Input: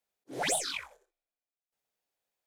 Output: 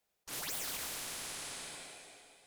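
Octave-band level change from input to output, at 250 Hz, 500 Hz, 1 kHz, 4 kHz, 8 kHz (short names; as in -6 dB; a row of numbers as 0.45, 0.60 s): -7.5, -11.5, -8.5, -3.5, -3.5 dB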